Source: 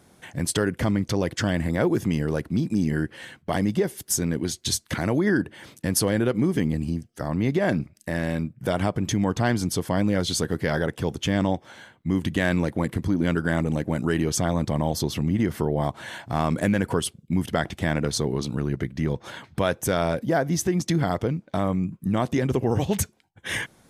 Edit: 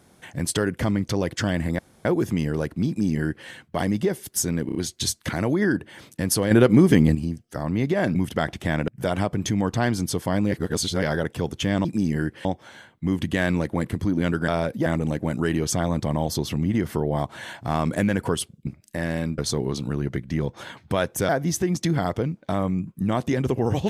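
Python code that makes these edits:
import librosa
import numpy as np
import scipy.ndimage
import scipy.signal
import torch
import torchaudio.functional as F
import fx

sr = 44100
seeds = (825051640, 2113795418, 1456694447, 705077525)

y = fx.edit(x, sr, fx.insert_room_tone(at_s=1.79, length_s=0.26),
    fx.duplicate(start_s=2.62, length_s=0.6, to_s=11.48),
    fx.stutter(start_s=4.4, slice_s=0.03, count=4),
    fx.clip_gain(start_s=6.16, length_s=0.64, db=7.5),
    fx.swap(start_s=7.8, length_s=0.71, other_s=17.32, other_length_s=0.73),
    fx.reverse_span(start_s=10.15, length_s=0.5),
    fx.move(start_s=19.96, length_s=0.38, to_s=13.51), tone=tone)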